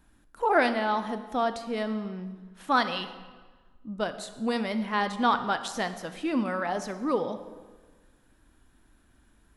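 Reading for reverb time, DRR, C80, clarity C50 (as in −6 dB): 1.4 s, 10.0 dB, 12.5 dB, 11.5 dB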